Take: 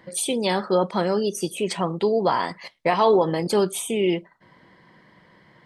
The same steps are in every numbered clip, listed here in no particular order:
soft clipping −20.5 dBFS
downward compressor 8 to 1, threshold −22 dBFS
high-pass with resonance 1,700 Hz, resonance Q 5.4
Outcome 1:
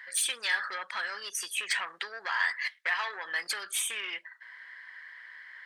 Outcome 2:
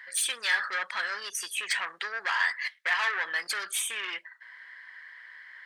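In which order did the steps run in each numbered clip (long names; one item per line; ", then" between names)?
downward compressor, then soft clipping, then high-pass with resonance
soft clipping, then downward compressor, then high-pass with resonance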